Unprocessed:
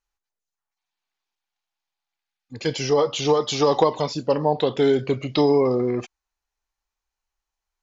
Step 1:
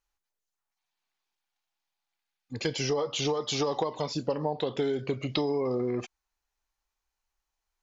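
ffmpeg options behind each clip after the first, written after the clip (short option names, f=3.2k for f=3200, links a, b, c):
-af "acompressor=threshold=-26dB:ratio=6"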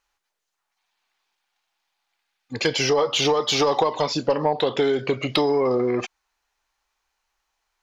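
-filter_complex "[0:a]asplit=2[a][b];[b]highpass=f=720:p=1,volume=11dB,asoftclip=type=tanh:threshold=-14dB[c];[a][c]amix=inputs=2:normalize=0,lowpass=f=3.7k:p=1,volume=-6dB,volume=7dB"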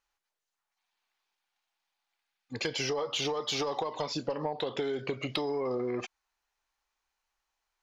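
-af "acompressor=threshold=-21dB:ratio=6,volume=-7.5dB"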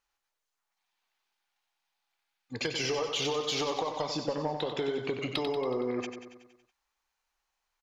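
-af "aecho=1:1:93|186|279|372|465|558|651:0.398|0.235|0.139|0.0818|0.0482|0.0285|0.0168"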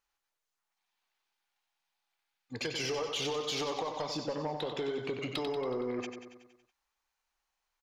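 -af "asoftclip=type=tanh:threshold=-23.5dB,volume=-2dB"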